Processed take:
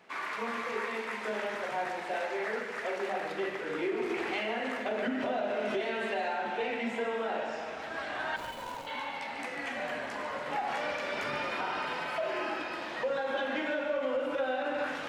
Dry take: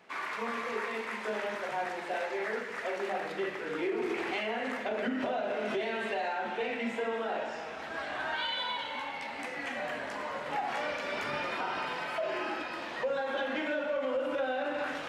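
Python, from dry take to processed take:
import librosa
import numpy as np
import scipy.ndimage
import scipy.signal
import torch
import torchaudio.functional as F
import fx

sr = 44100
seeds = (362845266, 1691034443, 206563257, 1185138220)

y = fx.median_filter(x, sr, points=25, at=(8.36, 8.87))
y = fx.echo_feedback(y, sr, ms=145, feedback_pct=52, wet_db=-11)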